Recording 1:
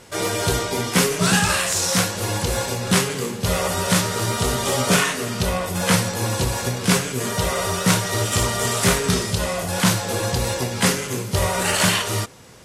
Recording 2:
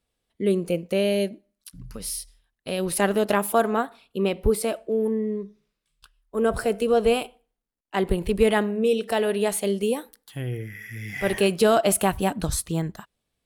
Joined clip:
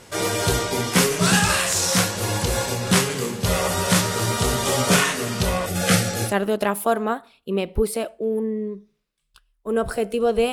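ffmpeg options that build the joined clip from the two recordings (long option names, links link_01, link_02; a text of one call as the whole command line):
ffmpeg -i cue0.wav -i cue1.wav -filter_complex "[0:a]asettb=1/sr,asplit=3[link_01][link_02][link_03];[link_01]atrim=end=5.664[link_04];[link_02]atrim=start=5.66:end=6.34,asetpts=PTS-STARTPTS,afade=type=in:duration=0.004:curve=qsin,afade=type=out:start_time=0.676:duration=0.004:curve=qsin,asuperstop=centerf=1000:order=20:qfactor=4[link_05];[link_03]atrim=start=6.336[link_06];[link_04][link_05]acrossfade=duration=0.004:curve1=hsin:curve2=qsin[link_07];[link_07][link_06]acrossfade=duration=0.004:curve1=qsin:curve2=hsin,apad=whole_dur=10.52,atrim=end=10.52,atrim=end=6.34,asetpts=PTS-STARTPTS[link_08];[1:a]atrim=start=2.9:end=7.2,asetpts=PTS-STARTPTS[link_09];[link_08][link_09]acrossfade=duration=0.12:curve1=tri:curve2=tri" out.wav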